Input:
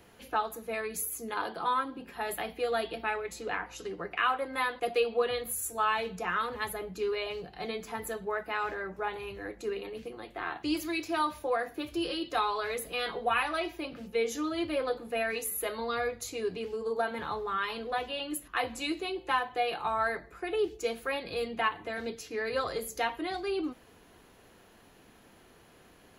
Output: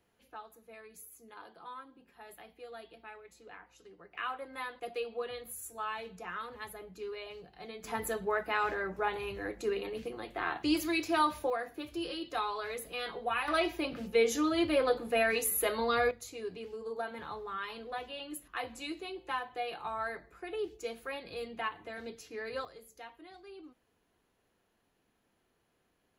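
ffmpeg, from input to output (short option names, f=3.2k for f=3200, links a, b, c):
-af "asetnsamples=n=441:p=0,asendcmd='4.15 volume volume -9.5dB;7.84 volume volume 1.5dB;11.5 volume volume -5dB;13.48 volume volume 3dB;16.11 volume volume -7dB;22.65 volume volume -18dB',volume=-17dB"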